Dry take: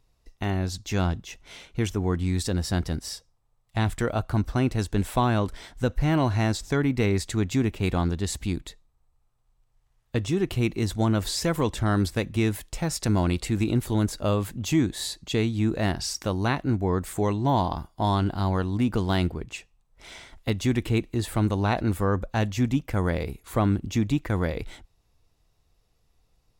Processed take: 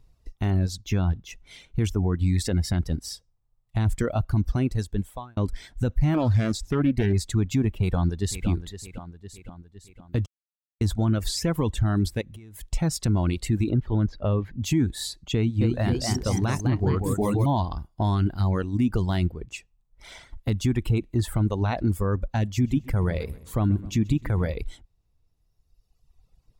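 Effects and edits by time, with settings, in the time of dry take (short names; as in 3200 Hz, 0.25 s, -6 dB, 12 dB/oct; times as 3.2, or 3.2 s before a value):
0.81–1.3 bell 8200 Hz -5 dB 0.63 oct
2.36–2.77 bell 2100 Hz +12 dB 0.28 oct
4.56–5.37 fade out
6.14–7.13 Doppler distortion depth 0.39 ms
7.79–8.47 echo throw 0.51 s, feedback 50%, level -9 dB
10.26–10.81 mute
12.21–12.66 compressor 20:1, threshold -35 dBFS
13.69–14.61 air absorption 260 m
15.34–17.46 echoes that change speed 0.268 s, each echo +1 st, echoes 2
22.47–24.54 feedback echo 0.13 s, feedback 45%, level -13 dB
whole clip: low shelf 280 Hz +10.5 dB; reverb removal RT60 1.9 s; limiter -14 dBFS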